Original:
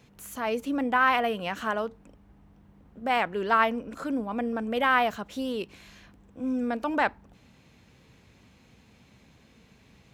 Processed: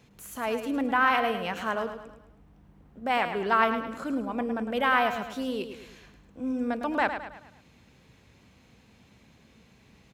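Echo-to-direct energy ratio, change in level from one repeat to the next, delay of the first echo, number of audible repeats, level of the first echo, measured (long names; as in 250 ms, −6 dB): −8.0 dB, −7.0 dB, 107 ms, 4, −9.0 dB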